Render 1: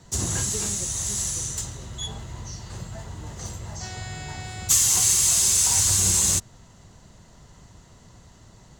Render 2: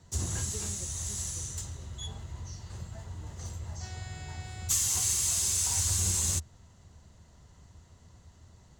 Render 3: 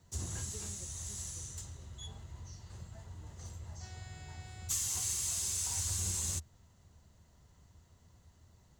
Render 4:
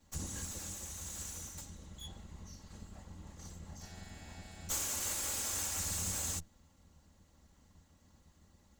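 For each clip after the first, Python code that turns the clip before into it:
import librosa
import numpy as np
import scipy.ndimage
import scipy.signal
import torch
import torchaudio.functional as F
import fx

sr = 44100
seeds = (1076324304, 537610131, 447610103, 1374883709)

y1 = fx.peak_eq(x, sr, hz=79.0, db=12.5, octaves=0.42)
y1 = F.gain(torch.from_numpy(y1), -9.0).numpy()
y2 = fx.quant_dither(y1, sr, seeds[0], bits=12, dither='none')
y2 = F.gain(torch.from_numpy(y2), -7.0).numpy()
y3 = fx.lower_of_two(y2, sr, delay_ms=3.6)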